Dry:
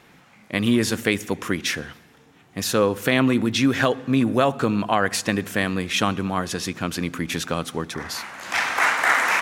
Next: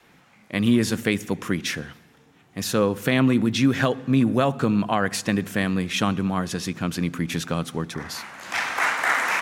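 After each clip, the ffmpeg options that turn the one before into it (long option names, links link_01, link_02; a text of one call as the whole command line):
ffmpeg -i in.wav -af "adynamicequalizer=threshold=0.0178:dfrequency=160:dqfactor=1.1:tfrequency=160:tqfactor=1.1:attack=5:release=100:ratio=0.375:range=3.5:mode=boostabove:tftype=bell,volume=-3dB" out.wav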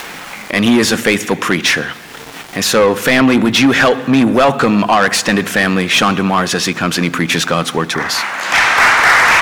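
ffmpeg -i in.wav -filter_complex "[0:a]asplit=2[link_01][link_02];[link_02]highpass=frequency=720:poles=1,volume=22dB,asoftclip=type=tanh:threshold=-5.5dB[link_03];[link_01][link_03]amix=inputs=2:normalize=0,lowpass=frequency=4600:poles=1,volume=-6dB,aeval=exprs='val(0)*gte(abs(val(0)),0.00708)':channel_layout=same,acompressor=mode=upward:threshold=-22dB:ratio=2.5,volume=4.5dB" out.wav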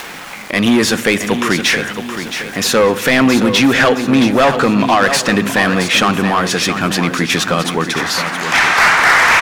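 ffmpeg -i in.wav -af "aecho=1:1:670|1340|2010|2680|3350:0.355|0.16|0.0718|0.0323|0.0145,volume=-1dB" out.wav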